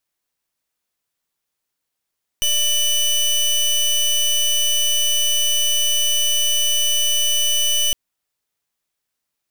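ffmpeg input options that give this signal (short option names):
-f lavfi -i "aevalsrc='0.133*(2*lt(mod(2980*t,1),0.23)-1)':d=5.51:s=44100"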